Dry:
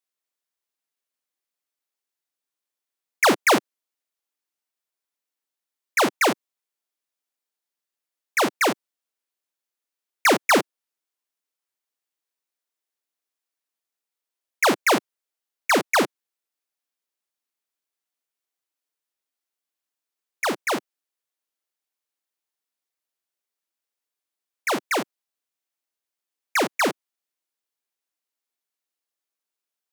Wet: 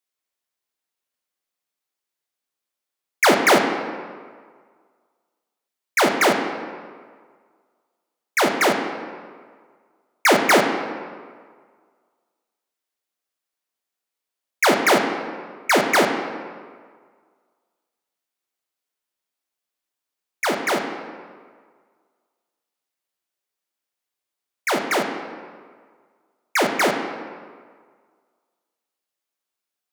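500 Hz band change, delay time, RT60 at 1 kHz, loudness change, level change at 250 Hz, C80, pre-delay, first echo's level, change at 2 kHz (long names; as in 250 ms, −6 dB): +4.0 dB, no echo audible, 1.7 s, +2.0 dB, +3.5 dB, 6.0 dB, 3 ms, no echo audible, +3.0 dB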